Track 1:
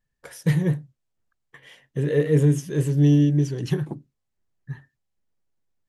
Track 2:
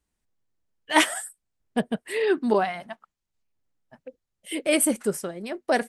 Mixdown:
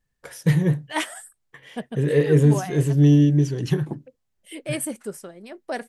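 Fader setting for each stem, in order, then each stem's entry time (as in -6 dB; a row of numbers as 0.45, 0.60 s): +2.0, -7.0 dB; 0.00, 0.00 s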